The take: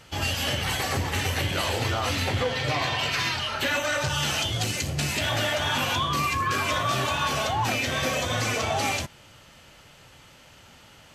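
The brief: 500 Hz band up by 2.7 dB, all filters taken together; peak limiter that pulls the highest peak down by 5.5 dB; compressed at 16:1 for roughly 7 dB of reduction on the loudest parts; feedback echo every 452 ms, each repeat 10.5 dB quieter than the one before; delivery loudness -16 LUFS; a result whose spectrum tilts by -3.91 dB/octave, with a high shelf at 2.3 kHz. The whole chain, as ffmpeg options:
-af "equalizer=f=500:t=o:g=3,highshelf=f=2300:g=3.5,acompressor=threshold=0.0447:ratio=16,alimiter=limit=0.0708:level=0:latency=1,aecho=1:1:452|904|1356:0.299|0.0896|0.0269,volume=5.62"

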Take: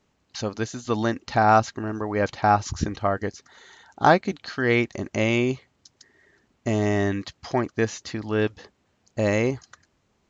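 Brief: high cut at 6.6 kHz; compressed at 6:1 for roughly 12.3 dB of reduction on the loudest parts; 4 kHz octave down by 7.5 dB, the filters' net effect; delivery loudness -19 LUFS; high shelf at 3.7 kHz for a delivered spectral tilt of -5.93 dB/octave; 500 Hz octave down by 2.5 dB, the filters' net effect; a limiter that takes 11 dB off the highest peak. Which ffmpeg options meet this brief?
-af "lowpass=6600,equalizer=f=500:t=o:g=-3,highshelf=f=3700:g=-9,equalizer=f=4000:t=o:g=-3.5,acompressor=threshold=0.0447:ratio=6,volume=7.94,alimiter=limit=0.447:level=0:latency=1"

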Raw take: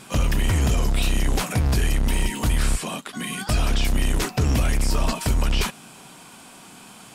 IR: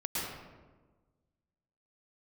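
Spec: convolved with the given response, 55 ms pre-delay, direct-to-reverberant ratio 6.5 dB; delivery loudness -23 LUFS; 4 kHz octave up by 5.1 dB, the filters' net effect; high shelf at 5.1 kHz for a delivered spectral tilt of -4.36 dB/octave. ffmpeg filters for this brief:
-filter_complex "[0:a]equalizer=f=4000:t=o:g=8.5,highshelf=f=5100:g=-3.5,asplit=2[s0][s1];[1:a]atrim=start_sample=2205,adelay=55[s2];[s1][s2]afir=irnorm=-1:irlink=0,volume=0.251[s3];[s0][s3]amix=inputs=2:normalize=0,volume=0.841"

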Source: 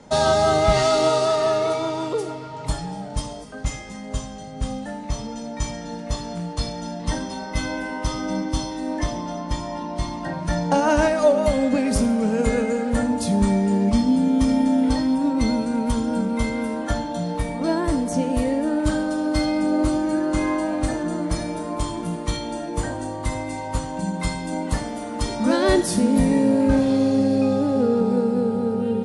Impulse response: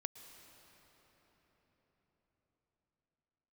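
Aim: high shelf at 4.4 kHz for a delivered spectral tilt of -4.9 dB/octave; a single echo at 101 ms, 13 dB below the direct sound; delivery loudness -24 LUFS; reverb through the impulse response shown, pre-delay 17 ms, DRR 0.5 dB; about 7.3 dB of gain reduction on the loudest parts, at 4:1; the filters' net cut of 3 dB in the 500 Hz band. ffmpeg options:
-filter_complex "[0:a]equalizer=f=500:t=o:g=-4,highshelf=f=4400:g=5,acompressor=threshold=0.0708:ratio=4,aecho=1:1:101:0.224,asplit=2[s0][s1];[1:a]atrim=start_sample=2205,adelay=17[s2];[s1][s2]afir=irnorm=-1:irlink=0,volume=1.26[s3];[s0][s3]amix=inputs=2:normalize=0,volume=1.06"

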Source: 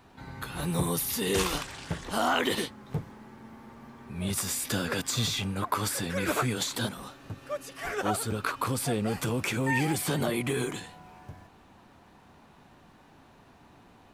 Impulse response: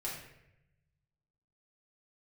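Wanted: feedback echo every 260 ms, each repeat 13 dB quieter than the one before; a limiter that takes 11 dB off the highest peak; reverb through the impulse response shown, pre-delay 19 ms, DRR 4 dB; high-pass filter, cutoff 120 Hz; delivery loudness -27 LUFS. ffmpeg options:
-filter_complex "[0:a]highpass=120,alimiter=limit=0.0708:level=0:latency=1,aecho=1:1:260|520|780:0.224|0.0493|0.0108,asplit=2[s0][s1];[1:a]atrim=start_sample=2205,adelay=19[s2];[s1][s2]afir=irnorm=-1:irlink=0,volume=0.531[s3];[s0][s3]amix=inputs=2:normalize=0,volume=1.68"

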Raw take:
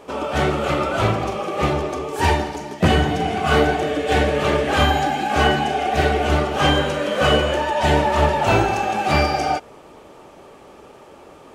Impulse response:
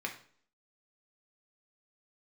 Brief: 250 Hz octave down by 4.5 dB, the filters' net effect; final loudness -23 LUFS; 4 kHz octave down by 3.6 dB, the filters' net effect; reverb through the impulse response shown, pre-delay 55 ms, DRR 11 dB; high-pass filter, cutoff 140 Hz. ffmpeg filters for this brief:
-filter_complex "[0:a]highpass=140,equalizer=f=250:t=o:g=-5.5,equalizer=f=4000:t=o:g=-5.5,asplit=2[s0][s1];[1:a]atrim=start_sample=2205,adelay=55[s2];[s1][s2]afir=irnorm=-1:irlink=0,volume=0.2[s3];[s0][s3]amix=inputs=2:normalize=0,volume=0.794"

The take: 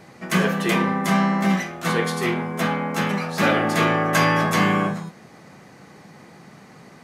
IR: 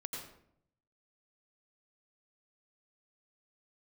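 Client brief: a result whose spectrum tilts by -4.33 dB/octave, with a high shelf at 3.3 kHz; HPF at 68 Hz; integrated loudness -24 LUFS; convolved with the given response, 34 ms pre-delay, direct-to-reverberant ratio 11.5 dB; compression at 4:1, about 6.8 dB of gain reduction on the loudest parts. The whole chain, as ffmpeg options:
-filter_complex "[0:a]highpass=68,highshelf=f=3300:g=5.5,acompressor=threshold=0.0794:ratio=4,asplit=2[s0][s1];[1:a]atrim=start_sample=2205,adelay=34[s2];[s1][s2]afir=irnorm=-1:irlink=0,volume=0.282[s3];[s0][s3]amix=inputs=2:normalize=0,volume=1.12"

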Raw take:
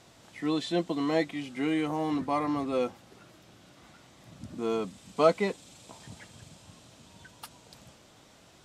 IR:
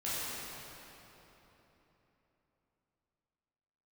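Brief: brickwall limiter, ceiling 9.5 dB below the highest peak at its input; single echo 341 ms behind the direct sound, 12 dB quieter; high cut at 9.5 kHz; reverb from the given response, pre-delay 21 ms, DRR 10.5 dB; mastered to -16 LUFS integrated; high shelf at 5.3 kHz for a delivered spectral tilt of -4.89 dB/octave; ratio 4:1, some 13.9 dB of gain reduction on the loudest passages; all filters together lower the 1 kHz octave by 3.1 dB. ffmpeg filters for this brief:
-filter_complex "[0:a]lowpass=9500,equalizer=f=1000:t=o:g=-4,highshelf=f=5300:g=-6.5,acompressor=threshold=0.0178:ratio=4,alimiter=level_in=2.66:limit=0.0631:level=0:latency=1,volume=0.376,aecho=1:1:341:0.251,asplit=2[s0][s1];[1:a]atrim=start_sample=2205,adelay=21[s2];[s1][s2]afir=irnorm=-1:irlink=0,volume=0.141[s3];[s0][s3]amix=inputs=2:normalize=0,volume=25.1"

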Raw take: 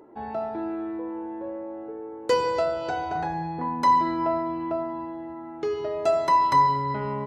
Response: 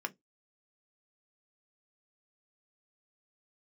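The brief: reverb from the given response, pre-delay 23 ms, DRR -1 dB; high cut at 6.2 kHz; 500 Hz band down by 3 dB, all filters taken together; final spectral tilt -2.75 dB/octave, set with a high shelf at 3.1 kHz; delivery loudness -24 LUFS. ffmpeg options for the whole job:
-filter_complex "[0:a]lowpass=6200,equalizer=f=500:t=o:g=-4.5,highshelf=f=3100:g=8,asplit=2[s0][s1];[1:a]atrim=start_sample=2205,adelay=23[s2];[s1][s2]afir=irnorm=-1:irlink=0,volume=0.841[s3];[s0][s3]amix=inputs=2:normalize=0,volume=0.668"

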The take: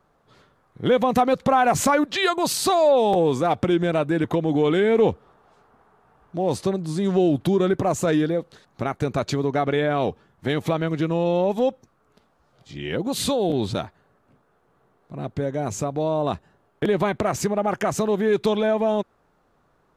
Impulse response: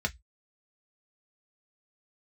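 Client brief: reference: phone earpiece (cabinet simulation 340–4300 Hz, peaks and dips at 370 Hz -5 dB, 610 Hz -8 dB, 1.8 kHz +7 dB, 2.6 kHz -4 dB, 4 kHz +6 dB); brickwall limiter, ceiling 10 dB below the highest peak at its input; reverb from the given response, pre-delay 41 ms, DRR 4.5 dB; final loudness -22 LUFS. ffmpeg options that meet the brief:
-filter_complex "[0:a]alimiter=limit=0.133:level=0:latency=1,asplit=2[s0][s1];[1:a]atrim=start_sample=2205,adelay=41[s2];[s1][s2]afir=irnorm=-1:irlink=0,volume=0.282[s3];[s0][s3]amix=inputs=2:normalize=0,highpass=340,equalizer=f=370:t=q:w=4:g=-5,equalizer=f=610:t=q:w=4:g=-8,equalizer=f=1800:t=q:w=4:g=7,equalizer=f=2600:t=q:w=4:g=-4,equalizer=f=4000:t=q:w=4:g=6,lowpass=f=4300:w=0.5412,lowpass=f=4300:w=1.3066,volume=2.51"

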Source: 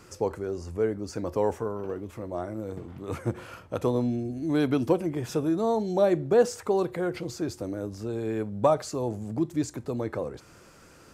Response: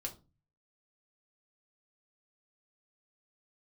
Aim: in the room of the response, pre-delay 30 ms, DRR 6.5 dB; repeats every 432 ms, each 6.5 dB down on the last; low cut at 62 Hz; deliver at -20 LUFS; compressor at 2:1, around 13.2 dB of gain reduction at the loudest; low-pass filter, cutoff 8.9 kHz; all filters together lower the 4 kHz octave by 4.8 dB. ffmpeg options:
-filter_complex "[0:a]highpass=62,lowpass=8900,equalizer=f=4000:t=o:g=-6,acompressor=threshold=0.00794:ratio=2,aecho=1:1:432|864|1296|1728|2160|2592:0.473|0.222|0.105|0.0491|0.0231|0.0109,asplit=2[s0][s1];[1:a]atrim=start_sample=2205,adelay=30[s2];[s1][s2]afir=irnorm=-1:irlink=0,volume=0.531[s3];[s0][s3]amix=inputs=2:normalize=0,volume=7.08"

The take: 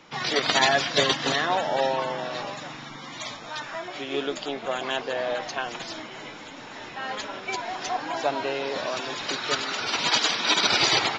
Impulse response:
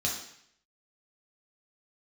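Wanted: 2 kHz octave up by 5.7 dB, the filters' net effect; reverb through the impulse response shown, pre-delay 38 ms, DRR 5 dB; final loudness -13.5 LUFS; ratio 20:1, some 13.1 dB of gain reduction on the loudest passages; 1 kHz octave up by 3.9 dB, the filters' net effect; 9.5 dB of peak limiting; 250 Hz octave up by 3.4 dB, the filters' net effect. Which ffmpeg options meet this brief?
-filter_complex "[0:a]equalizer=f=250:t=o:g=4,equalizer=f=1000:t=o:g=3.5,equalizer=f=2000:t=o:g=6,acompressor=threshold=0.0501:ratio=20,alimiter=limit=0.0841:level=0:latency=1,asplit=2[s0][s1];[1:a]atrim=start_sample=2205,adelay=38[s2];[s1][s2]afir=irnorm=-1:irlink=0,volume=0.266[s3];[s0][s3]amix=inputs=2:normalize=0,volume=6.68"

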